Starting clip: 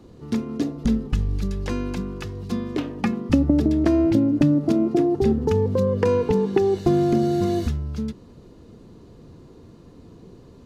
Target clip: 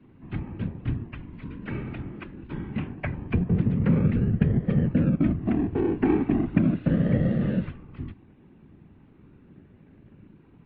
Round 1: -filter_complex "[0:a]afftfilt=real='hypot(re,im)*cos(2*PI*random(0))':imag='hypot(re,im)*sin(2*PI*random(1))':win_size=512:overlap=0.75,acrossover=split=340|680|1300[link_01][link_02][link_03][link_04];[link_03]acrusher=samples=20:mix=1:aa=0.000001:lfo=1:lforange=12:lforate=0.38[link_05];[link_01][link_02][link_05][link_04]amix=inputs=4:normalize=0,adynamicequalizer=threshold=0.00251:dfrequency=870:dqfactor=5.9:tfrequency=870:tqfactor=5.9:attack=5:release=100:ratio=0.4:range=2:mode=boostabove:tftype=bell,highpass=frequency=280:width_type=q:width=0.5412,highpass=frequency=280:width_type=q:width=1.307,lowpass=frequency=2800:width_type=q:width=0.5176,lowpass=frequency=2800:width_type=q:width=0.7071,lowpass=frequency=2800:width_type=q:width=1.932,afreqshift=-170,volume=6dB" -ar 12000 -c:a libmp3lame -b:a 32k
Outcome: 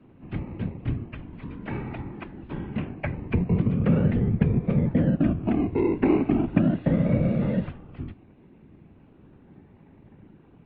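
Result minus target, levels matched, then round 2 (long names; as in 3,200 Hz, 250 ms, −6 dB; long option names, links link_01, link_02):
sample-and-hold swept by an LFO: distortion −21 dB
-filter_complex "[0:a]afftfilt=real='hypot(re,im)*cos(2*PI*random(0))':imag='hypot(re,im)*sin(2*PI*random(1))':win_size=512:overlap=0.75,acrossover=split=340|680|1300[link_01][link_02][link_03][link_04];[link_03]acrusher=samples=46:mix=1:aa=0.000001:lfo=1:lforange=27.6:lforate=0.38[link_05];[link_01][link_02][link_05][link_04]amix=inputs=4:normalize=0,adynamicequalizer=threshold=0.00251:dfrequency=870:dqfactor=5.9:tfrequency=870:tqfactor=5.9:attack=5:release=100:ratio=0.4:range=2:mode=boostabove:tftype=bell,highpass=frequency=280:width_type=q:width=0.5412,highpass=frequency=280:width_type=q:width=1.307,lowpass=frequency=2800:width_type=q:width=0.5176,lowpass=frequency=2800:width_type=q:width=0.7071,lowpass=frequency=2800:width_type=q:width=1.932,afreqshift=-170,volume=6dB" -ar 12000 -c:a libmp3lame -b:a 32k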